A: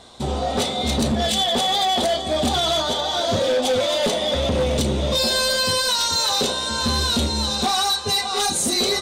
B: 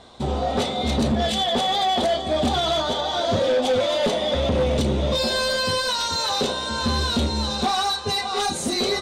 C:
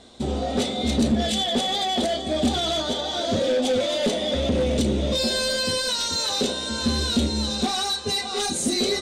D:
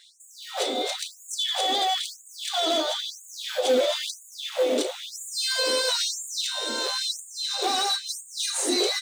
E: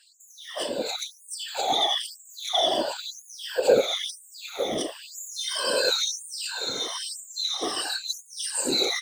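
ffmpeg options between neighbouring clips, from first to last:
-af "lowpass=f=3100:p=1"
-af "equalizer=f=125:t=o:w=1:g=-5,equalizer=f=250:t=o:w=1:g=5,equalizer=f=1000:t=o:w=1:g=-8,equalizer=f=8000:t=o:w=1:g=5,volume=0.891"
-filter_complex "[0:a]asplit=2[s0][s1];[s1]acrusher=samples=12:mix=1:aa=0.000001,volume=0.266[s2];[s0][s2]amix=inputs=2:normalize=0,afftfilt=real='re*gte(b*sr/1024,240*pow(6700/240,0.5+0.5*sin(2*PI*1*pts/sr)))':imag='im*gte(b*sr/1024,240*pow(6700/240,0.5+0.5*sin(2*PI*1*pts/sr)))':win_size=1024:overlap=0.75"
-af "afftfilt=real='re*pow(10,20/40*sin(2*PI*(1.3*log(max(b,1)*sr/1024/100)/log(2)-(-1.4)*(pts-256)/sr)))':imag='im*pow(10,20/40*sin(2*PI*(1.3*log(max(b,1)*sr/1024/100)/log(2)-(-1.4)*(pts-256)/sr)))':win_size=1024:overlap=0.75,afftfilt=real='hypot(re,im)*cos(2*PI*random(0))':imag='hypot(re,im)*sin(2*PI*random(1))':win_size=512:overlap=0.75"

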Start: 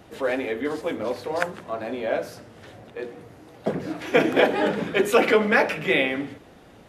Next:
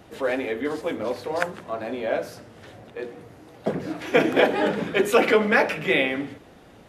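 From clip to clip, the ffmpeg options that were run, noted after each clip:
-af anull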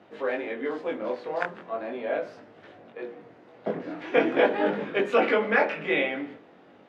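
-af "flanger=delay=19.5:depth=4.9:speed=0.42,highpass=210,lowpass=2900"

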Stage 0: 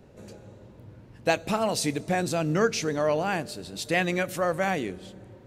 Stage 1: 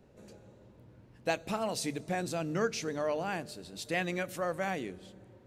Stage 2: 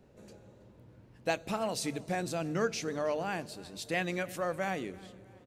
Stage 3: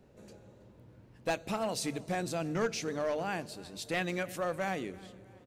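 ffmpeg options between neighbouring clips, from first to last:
-af "bandreject=f=50:t=h:w=6,bandreject=f=100:t=h:w=6,bandreject=f=150:t=h:w=6,volume=0.422"
-af "aecho=1:1:323|646|969:0.0794|0.0326|0.0134"
-af "aeval=exprs='clip(val(0),-1,0.0447)':c=same"

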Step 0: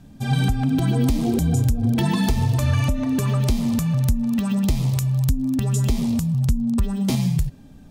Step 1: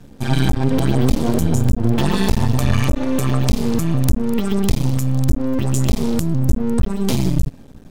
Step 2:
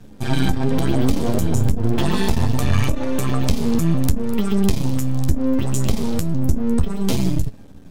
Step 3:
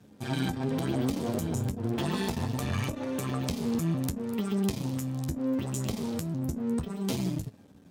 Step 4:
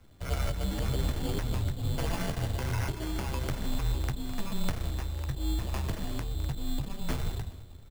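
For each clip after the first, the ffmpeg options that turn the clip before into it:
-af "aeval=exprs='max(val(0),0)':c=same,volume=2.24"
-af "flanger=delay=9.3:depth=3.3:regen=47:speed=0.67:shape=triangular,volume=1.33"
-af "highpass=110,volume=0.355"
-filter_complex "[0:a]asplit=2[s0][s1];[s1]adelay=209,lowpass=f=4800:p=1,volume=0.178,asplit=2[s2][s3];[s3]adelay=209,lowpass=f=4800:p=1,volume=0.53,asplit=2[s4][s5];[s5]adelay=209,lowpass=f=4800:p=1,volume=0.53,asplit=2[s6][s7];[s7]adelay=209,lowpass=f=4800:p=1,volume=0.53,asplit=2[s8][s9];[s9]adelay=209,lowpass=f=4800:p=1,volume=0.53[s10];[s0][s2][s4][s6][s8][s10]amix=inputs=6:normalize=0,acrusher=samples=11:mix=1:aa=0.000001,afreqshift=-210"

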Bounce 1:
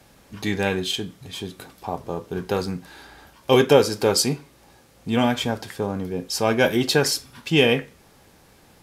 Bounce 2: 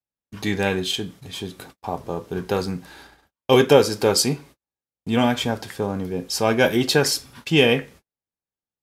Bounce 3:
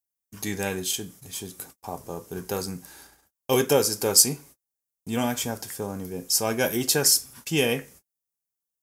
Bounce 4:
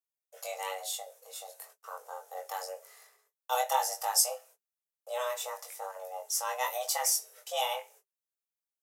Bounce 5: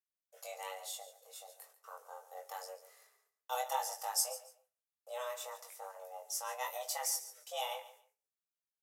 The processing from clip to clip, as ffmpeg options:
-af "agate=range=0.00501:threshold=0.00631:ratio=16:detection=peak,volume=1.12"
-af "aexciter=amount=6.3:drive=2.8:freq=5400,volume=0.447"
-af "afreqshift=370,flanger=delay=20:depth=2.3:speed=0.99,volume=0.531"
-af "aecho=1:1:142|284:0.178|0.0373,volume=0.422"

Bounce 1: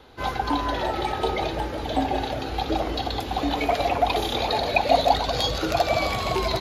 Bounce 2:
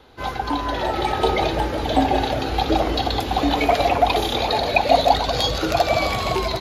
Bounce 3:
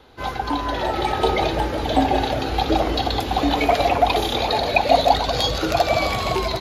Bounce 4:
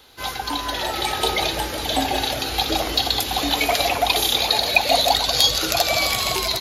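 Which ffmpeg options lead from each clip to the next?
-af "dynaudnorm=f=630:g=3:m=2.11"
-af anull
-af "crystalizer=i=8:c=0,volume=0.473"

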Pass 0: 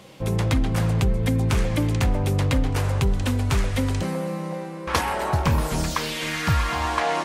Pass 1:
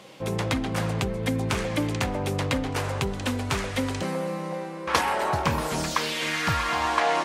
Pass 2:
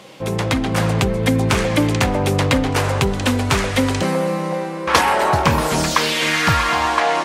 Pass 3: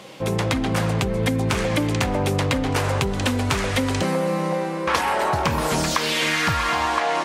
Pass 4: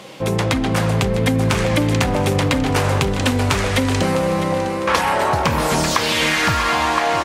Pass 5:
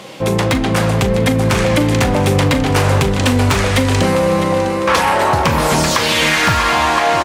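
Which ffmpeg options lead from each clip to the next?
-af "highpass=f=280:p=1,highshelf=f=11000:g=-7.5,volume=1.12"
-af "dynaudnorm=f=120:g=11:m=1.58,asoftclip=type=tanh:threshold=0.501,volume=2"
-af "acompressor=threshold=0.126:ratio=6"
-af "aecho=1:1:654|1308|1962|2616|3270:0.251|0.113|0.0509|0.0229|0.0103,volume=1.5"
-filter_complex "[0:a]volume=3.55,asoftclip=hard,volume=0.282,asplit=2[s0][s1];[s1]adelay=40,volume=0.224[s2];[s0][s2]amix=inputs=2:normalize=0,volume=1.58"

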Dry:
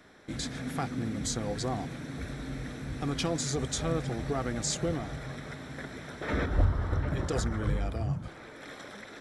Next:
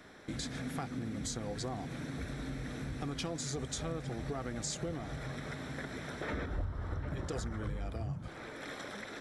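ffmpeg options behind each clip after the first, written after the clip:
-af "acompressor=threshold=0.0112:ratio=3,volume=1.19"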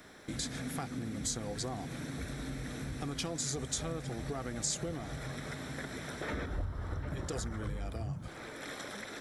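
-af "highshelf=f=6900:g=10.5"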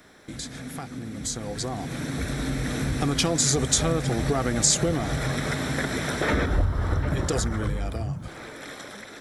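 -af "dynaudnorm=f=580:g=7:m=4.22,volume=1.19"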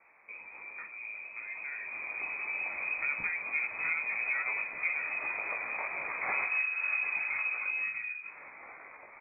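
-filter_complex "[0:a]flanger=delay=16.5:depth=3.7:speed=2.1,asplit=2[s0][s1];[s1]adelay=46,volume=0.251[s2];[s0][s2]amix=inputs=2:normalize=0,lowpass=f=2200:t=q:w=0.5098,lowpass=f=2200:t=q:w=0.6013,lowpass=f=2200:t=q:w=0.9,lowpass=f=2200:t=q:w=2.563,afreqshift=-2600,volume=0.501"

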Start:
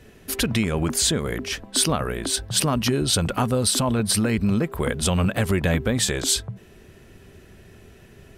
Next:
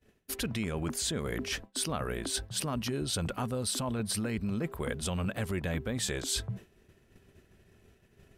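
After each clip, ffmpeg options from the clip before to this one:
-af "areverse,acompressor=threshold=0.0251:ratio=4,areverse,agate=range=0.0224:threshold=0.0141:ratio=3:detection=peak"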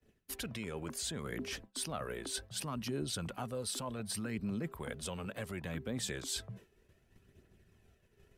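-filter_complex "[0:a]acrossover=split=120|530|2300[s0][s1][s2][s3];[s0]acompressor=threshold=0.00355:ratio=6[s4];[s4][s1][s2][s3]amix=inputs=4:normalize=0,aphaser=in_gain=1:out_gain=1:delay=2.4:decay=0.34:speed=0.67:type=triangular,volume=0.473"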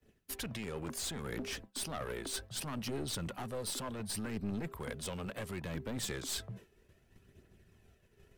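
-af "aeval=exprs='clip(val(0),-1,0.00841)':c=same,volume=1.26"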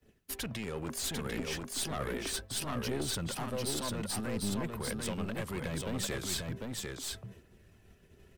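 -af "aecho=1:1:747:0.668,volume=1.33"

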